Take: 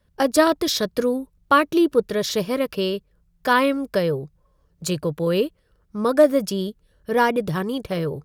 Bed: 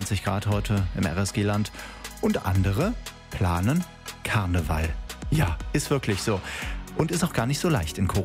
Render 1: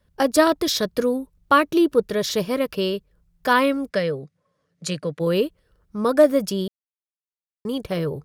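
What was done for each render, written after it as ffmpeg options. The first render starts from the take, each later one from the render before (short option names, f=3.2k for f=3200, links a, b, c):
-filter_complex "[0:a]asplit=3[a][b][c];[a]afade=t=out:st=3.89:d=0.02[d];[b]highpass=f=130:w=0.5412,highpass=f=130:w=1.3066,equalizer=f=150:t=q:w=4:g=-4,equalizer=f=360:t=q:w=4:g=-8,equalizer=f=910:t=q:w=4:g=-9,equalizer=f=2k:t=q:w=4:g=6,equalizer=f=7.9k:t=q:w=4:g=-4,lowpass=f=9.6k:w=0.5412,lowpass=f=9.6k:w=1.3066,afade=t=in:st=3.89:d=0.02,afade=t=out:st=5.19:d=0.02[e];[c]afade=t=in:st=5.19:d=0.02[f];[d][e][f]amix=inputs=3:normalize=0,asplit=3[g][h][i];[g]atrim=end=6.68,asetpts=PTS-STARTPTS,afade=t=out:st=6.676:d=0.004:c=hsin[j];[h]atrim=start=6.68:end=7.65,asetpts=PTS-STARTPTS,volume=0[k];[i]atrim=start=7.65,asetpts=PTS-STARTPTS,afade=t=in:d=0.004:c=hsin[l];[j][k][l]concat=n=3:v=0:a=1"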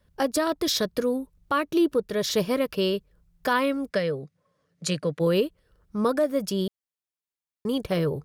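-af "alimiter=limit=-14dB:level=0:latency=1:release=440"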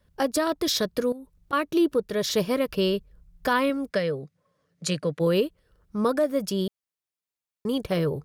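-filter_complex "[0:a]asettb=1/sr,asplit=3[a][b][c];[a]atrim=end=1.124[d];[b]atrim=start=1.12:end=1.53,asetpts=PTS-STARTPTS,afade=t=in:d=0.004:c=qsin,afade=t=out:st=0.406:d=0.004:c=qsin,acompressor=threshold=-38dB:ratio=6:attack=3.2:release=140:knee=1:detection=peak[e];[c]atrim=start=1.526[f];[d][e]acrossfade=d=0.004:c1=hsin:c2=qsin[g];[g][f]acrossfade=d=0.004:c1=qsin:c2=hsin,asettb=1/sr,asplit=3[h][i][j];[h]atrim=end=2.674[k];[i]atrim=start=2.67:end=3.7,asetpts=PTS-STARTPTS,afade=t=in:d=0.004:c=qsin,afade=t=out:st=1.026:d=0.004:c=qsin,lowshelf=f=94:g=11[l];[j]atrim=start=3.696[m];[k][l]acrossfade=d=0.004:c1=hsin:c2=qsin[n];[n][m]acrossfade=d=0.004:c1=qsin:c2=hsin"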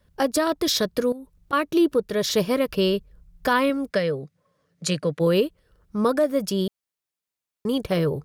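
-af "volume=2.5dB"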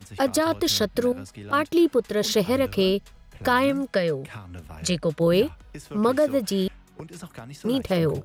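-filter_complex "[1:a]volume=-15.5dB[a];[0:a][a]amix=inputs=2:normalize=0"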